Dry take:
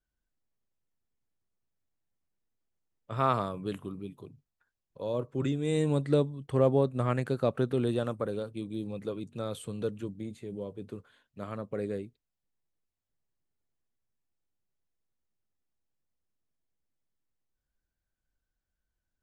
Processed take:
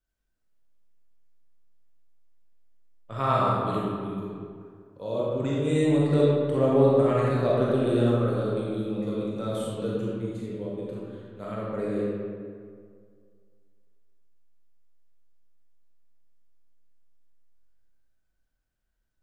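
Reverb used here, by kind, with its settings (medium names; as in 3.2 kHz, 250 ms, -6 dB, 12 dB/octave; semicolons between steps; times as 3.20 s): algorithmic reverb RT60 2.1 s, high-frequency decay 0.55×, pre-delay 0 ms, DRR -6 dB; trim -1.5 dB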